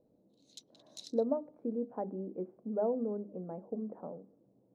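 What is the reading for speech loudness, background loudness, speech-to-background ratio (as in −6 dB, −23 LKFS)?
−37.5 LKFS, −52.5 LKFS, 15.0 dB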